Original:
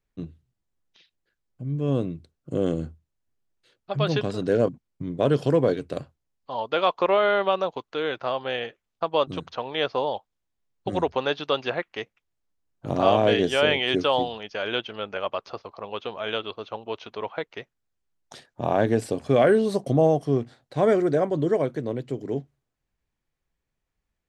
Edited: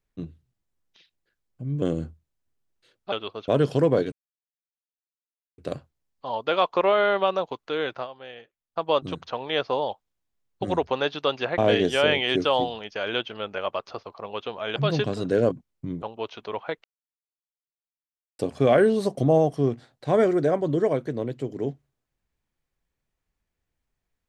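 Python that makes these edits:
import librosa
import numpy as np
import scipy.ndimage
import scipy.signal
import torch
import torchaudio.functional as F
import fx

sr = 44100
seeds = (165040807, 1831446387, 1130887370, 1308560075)

y = fx.edit(x, sr, fx.cut(start_s=1.82, length_s=0.81),
    fx.swap(start_s=3.93, length_s=1.26, other_s=16.35, other_length_s=0.36),
    fx.insert_silence(at_s=5.83, length_s=1.46),
    fx.fade_down_up(start_s=8.18, length_s=0.92, db=-13.0, fade_s=0.14, curve='qsin'),
    fx.cut(start_s=11.83, length_s=1.34),
    fx.silence(start_s=17.53, length_s=1.55), tone=tone)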